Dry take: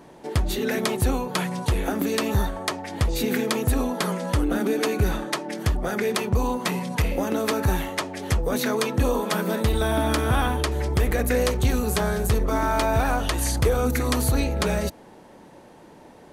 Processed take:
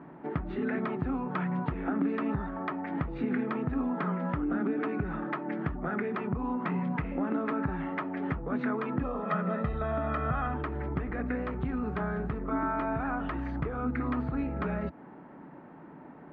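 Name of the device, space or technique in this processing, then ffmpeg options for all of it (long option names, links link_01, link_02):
bass amplifier: -filter_complex "[0:a]acompressor=threshold=-27dB:ratio=4,highpass=60,equalizer=frequency=92:width_type=q:width=4:gain=-9,equalizer=frequency=160:width_type=q:width=4:gain=7,equalizer=frequency=270:width_type=q:width=4:gain=7,equalizer=frequency=510:width_type=q:width=4:gain=-6,equalizer=frequency=1300:width_type=q:width=4:gain=6,lowpass=frequency=2100:width=0.5412,lowpass=frequency=2100:width=1.3066,asettb=1/sr,asplit=3[link_01][link_02][link_03];[link_01]atrim=end=9.044[link_04];[link_02]atrim=start=9.04:end=10.54,asetpts=PTS-STARTPTS,afade=type=in:duration=0.004:curve=qsin,afade=type=out:start_time=1.496:duration=0.004:curve=qsin,aecho=1:1:1.6:0.68,atrim=end_sample=66150[link_05];[link_03]atrim=start=10.536[link_06];[link_04][link_05]acrossfade=duration=0.004:curve1=hsin:curve2=qsin[link_07];[link_07][link_06]acrossfade=duration=0.004:curve1=qsin:curve2=hsin,volume=-2.5dB"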